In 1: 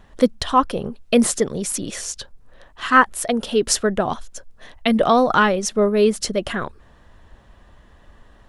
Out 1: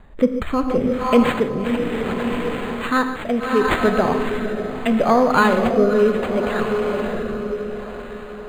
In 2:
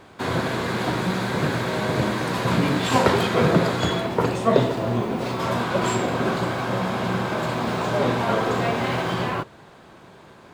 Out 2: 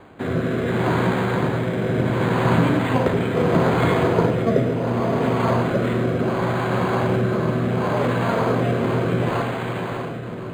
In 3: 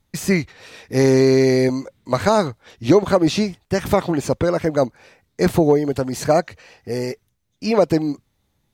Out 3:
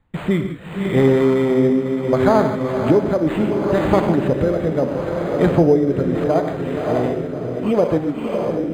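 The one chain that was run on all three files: echo that smears into a reverb 612 ms, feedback 49%, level -6 dB; gated-style reverb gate 180 ms flat, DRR 7 dB; in parallel at +1 dB: compression, threshold -23 dBFS; on the sum: rotary cabinet horn 0.7 Hz; decimation joined by straight lines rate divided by 8×; trim -1 dB

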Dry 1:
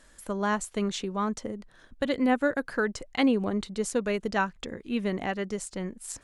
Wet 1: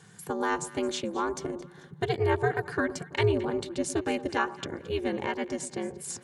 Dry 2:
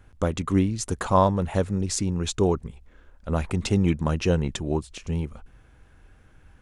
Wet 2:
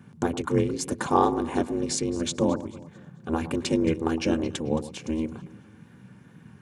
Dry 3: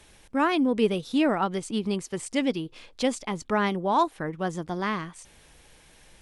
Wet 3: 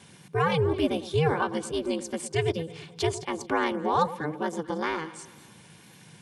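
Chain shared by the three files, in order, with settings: ring modulator 160 Hz; high-pass 88 Hz 24 dB/octave; in parallel at -2.5 dB: compression, threshold -37 dBFS; on the sum: wow and flutter 61 cents; comb of notches 650 Hz; on a send: echo whose repeats swap between lows and highs 110 ms, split 1.1 kHz, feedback 60%, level -13.5 dB; on the sum: trim +1.5 dB

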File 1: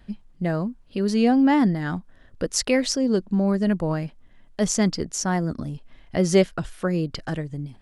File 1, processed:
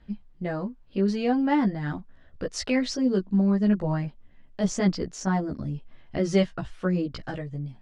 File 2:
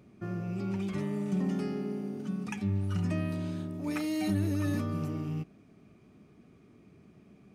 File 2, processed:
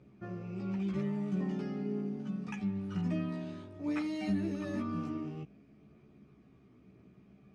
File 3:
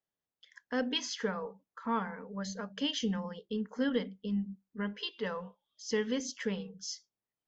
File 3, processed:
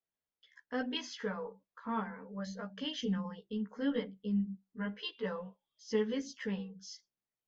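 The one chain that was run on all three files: chorus voices 2, 0.5 Hz, delay 15 ms, depth 1.2 ms; distance through air 97 m

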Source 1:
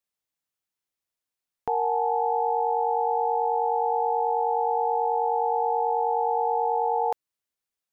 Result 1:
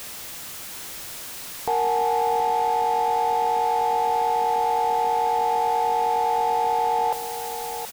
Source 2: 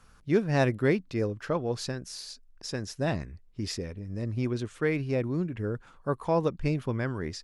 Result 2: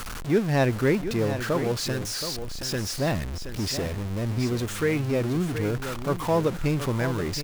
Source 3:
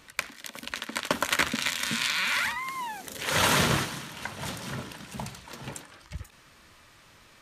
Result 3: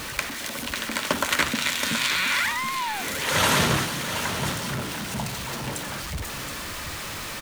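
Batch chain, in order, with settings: jump at every zero crossing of -30 dBFS; delay 724 ms -10 dB; trim +1 dB

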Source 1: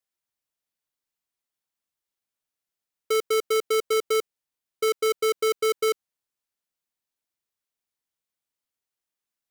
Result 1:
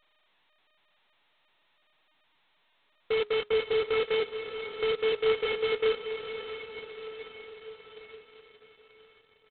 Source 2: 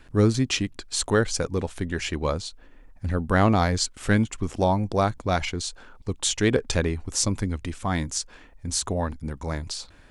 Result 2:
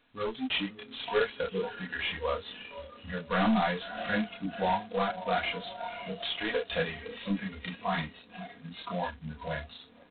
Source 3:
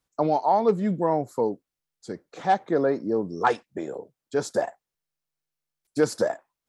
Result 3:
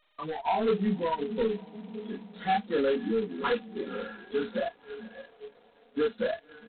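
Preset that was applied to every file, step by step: tracing distortion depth 0.023 ms; high-pass 130 Hz 12 dB/octave; comb 4.2 ms, depth 60%; echo that smears into a reverb 551 ms, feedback 58%, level -13 dB; in parallel at +0.5 dB: compression 8:1, threshold -30 dBFS; on the sum: chorus voices 6, 0.52 Hz, delay 29 ms, depth 2.7 ms; saturation -17.5 dBFS; feedback comb 210 Hz, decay 0.47 s, harmonics all, mix 40%; spectral noise reduction 18 dB; trim +2 dB; G.726 16 kbps 8 kHz

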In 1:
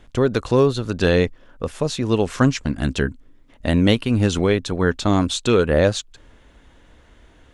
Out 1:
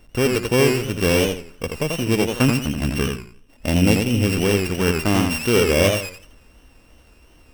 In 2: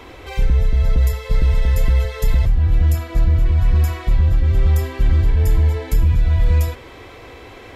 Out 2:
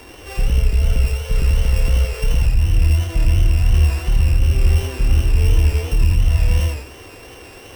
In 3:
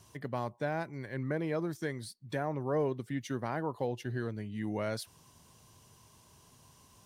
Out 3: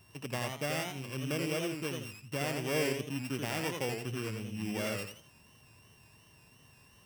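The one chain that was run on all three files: sorted samples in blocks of 16 samples; modulated delay 84 ms, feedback 31%, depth 153 cents, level -4.5 dB; trim -1.5 dB

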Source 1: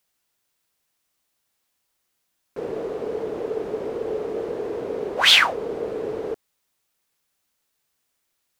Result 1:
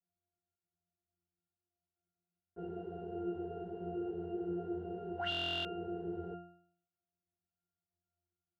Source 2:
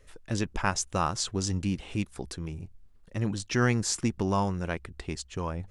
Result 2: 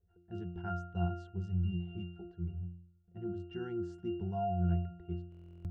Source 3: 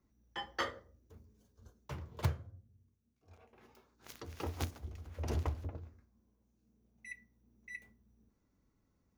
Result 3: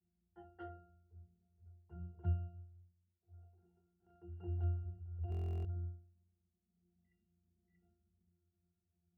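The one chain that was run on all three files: level-controlled noise filter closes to 950 Hz, open at -25.5 dBFS; pitch-class resonator F, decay 0.62 s; buffer glitch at 5.30 s, samples 1024, times 14; trim +8.5 dB

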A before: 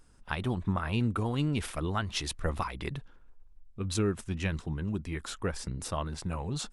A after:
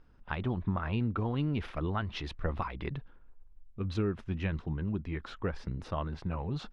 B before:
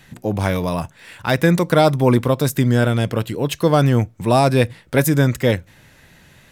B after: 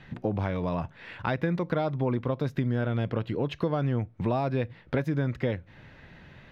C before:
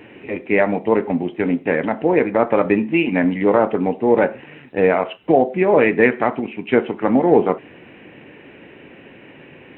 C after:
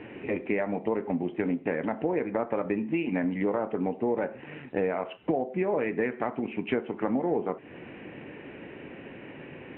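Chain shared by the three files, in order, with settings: compression 5:1, threshold -25 dBFS; distance through air 280 m

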